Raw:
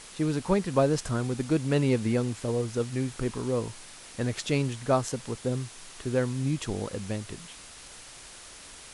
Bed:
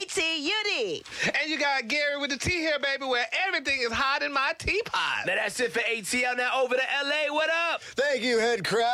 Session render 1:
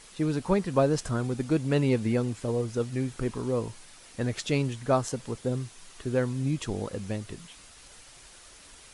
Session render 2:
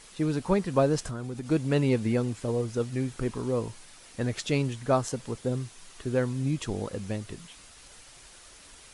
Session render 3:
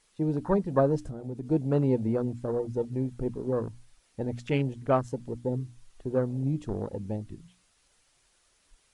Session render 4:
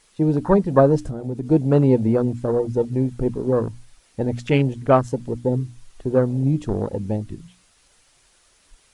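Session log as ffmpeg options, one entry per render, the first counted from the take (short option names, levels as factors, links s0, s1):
-af "afftdn=nr=6:nf=-47"
-filter_complex "[0:a]asettb=1/sr,asplit=3[s0][s1][s2];[s0]atrim=end=1.054[s3];[s1]atrim=start=1.05:end=1.47,asetpts=PTS-STARTPTS,afade=t=in:d=0.004:c=qsin,afade=t=out:st=0.416:d=0.004:c=qsin,acompressor=threshold=0.0282:ratio=4:attack=3.2:release=140:knee=1:detection=peak[s4];[s2]atrim=start=1.466[s5];[s3][s4]acrossfade=d=0.004:c1=hsin:c2=qsin[s6];[s6][s5]acrossfade=d=0.004:c1=qsin:c2=hsin"
-af "afwtdn=0.02,bandreject=f=60:t=h:w=6,bandreject=f=120:t=h:w=6,bandreject=f=180:t=h:w=6,bandreject=f=240:t=h:w=6,bandreject=f=300:t=h:w=6"
-af "volume=2.82"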